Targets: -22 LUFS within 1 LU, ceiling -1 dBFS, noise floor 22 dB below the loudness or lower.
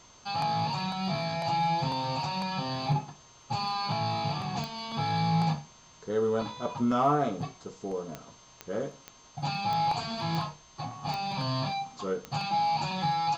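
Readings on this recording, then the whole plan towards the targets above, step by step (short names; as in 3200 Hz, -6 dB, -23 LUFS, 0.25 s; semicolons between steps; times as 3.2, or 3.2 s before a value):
clicks 8; steady tone 6300 Hz; tone level -58 dBFS; loudness -30.5 LUFS; peak -13.5 dBFS; loudness target -22.0 LUFS
-> de-click; notch 6300 Hz, Q 30; gain +8.5 dB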